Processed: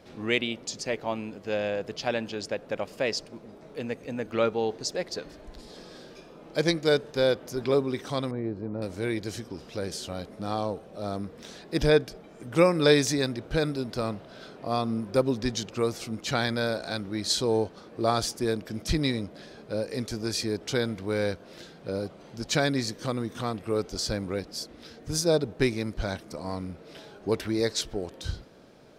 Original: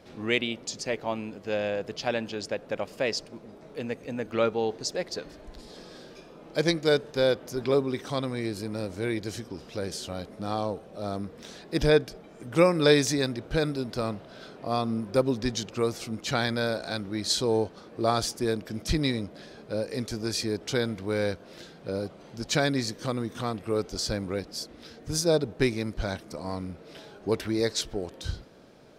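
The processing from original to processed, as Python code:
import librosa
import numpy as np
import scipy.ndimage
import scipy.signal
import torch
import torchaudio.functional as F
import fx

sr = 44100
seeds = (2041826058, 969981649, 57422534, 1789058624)

y = fx.lowpass(x, sr, hz=1000.0, slope=12, at=(8.31, 8.82))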